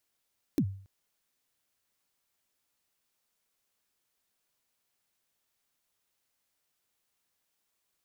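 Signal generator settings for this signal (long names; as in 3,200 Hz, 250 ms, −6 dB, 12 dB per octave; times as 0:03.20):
synth kick length 0.28 s, from 340 Hz, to 97 Hz, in 69 ms, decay 0.49 s, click on, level −20 dB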